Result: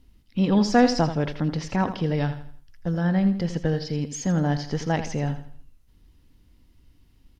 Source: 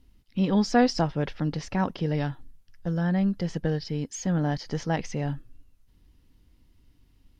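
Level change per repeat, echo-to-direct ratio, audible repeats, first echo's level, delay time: −8.5 dB, −10.5 dB, 3, −11.0 dB, 82 ms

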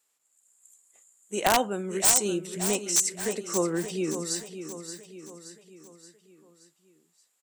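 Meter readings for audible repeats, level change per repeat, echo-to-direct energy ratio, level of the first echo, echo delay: 5, −6.0 dB, −9.0 dB, −10.0 dB, 575 ms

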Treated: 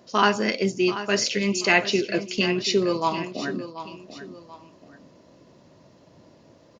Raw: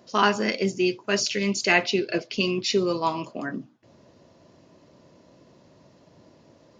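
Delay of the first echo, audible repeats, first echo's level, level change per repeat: 734 ms, 2, −12.5 dB, −8.5 dB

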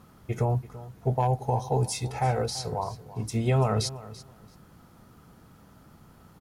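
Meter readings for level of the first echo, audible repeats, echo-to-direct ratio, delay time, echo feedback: −17.0 dB, 2, −17.0 dB, 336 ms, 18%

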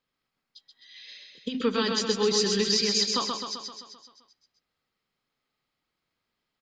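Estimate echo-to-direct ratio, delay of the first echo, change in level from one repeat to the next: −2.0 dB, 130 ms, −4.5 dB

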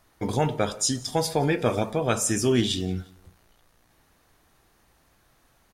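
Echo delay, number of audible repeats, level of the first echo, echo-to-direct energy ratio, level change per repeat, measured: 176 ms, 2, −24.0 dB, −23.5 dB, −8.0 dB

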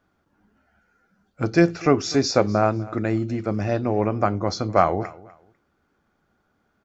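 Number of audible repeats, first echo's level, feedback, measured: 2, −20.5 dB, 24%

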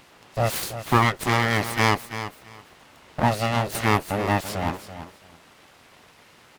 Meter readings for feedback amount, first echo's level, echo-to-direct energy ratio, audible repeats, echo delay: 18%, −11.5 dB, −11.5 dB, 2, 334 ms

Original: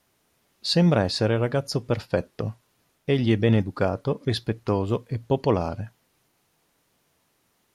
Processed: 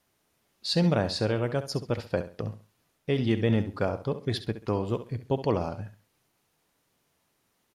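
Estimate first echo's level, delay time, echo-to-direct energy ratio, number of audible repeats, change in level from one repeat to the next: −12.0 dB, 67 ms, −11.5 dB, 3, −11.5 dB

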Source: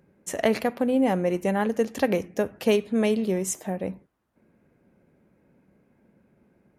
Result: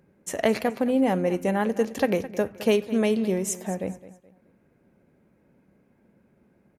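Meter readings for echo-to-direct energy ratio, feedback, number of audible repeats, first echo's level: −15.5 dB, 33%, 2, −16.0 dB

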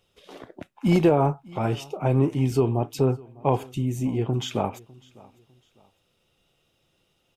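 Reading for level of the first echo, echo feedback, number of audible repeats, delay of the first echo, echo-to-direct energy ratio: −24.0 dB, 32%, 2, 602 ms, −23.5 dB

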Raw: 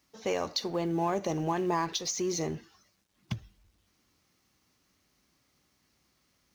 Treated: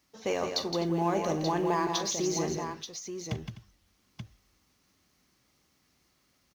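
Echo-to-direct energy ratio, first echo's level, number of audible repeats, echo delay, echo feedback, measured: −3.5 dB, −14.0 dB, 4, 41 ms, repeats not evenly spaced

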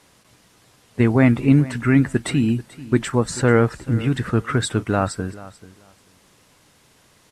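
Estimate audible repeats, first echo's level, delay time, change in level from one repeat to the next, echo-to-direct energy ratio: 2, −18.5 dB, 437 ms, −14.5 dB, −18.5 dB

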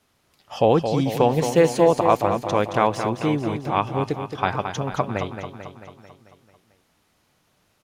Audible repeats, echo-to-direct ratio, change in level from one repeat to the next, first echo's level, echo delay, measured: 6, −6.0 dB, −4.5 dB, −8.0 dB, 221 ms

